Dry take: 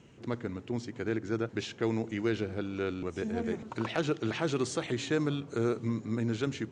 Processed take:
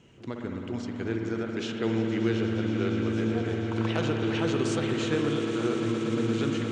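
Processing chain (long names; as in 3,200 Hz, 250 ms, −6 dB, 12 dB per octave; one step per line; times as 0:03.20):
parametric band 3,000 Hz +4 dB 0.36 octaves
on a send: echo that builds up and dies away 117 ms, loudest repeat 8, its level −15 dB
on the sum: spring reverb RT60 3.8 s, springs 54 ms, chirp 25 ms, DRR 2.5 dB
every ending faded ahead of time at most 110 dB per second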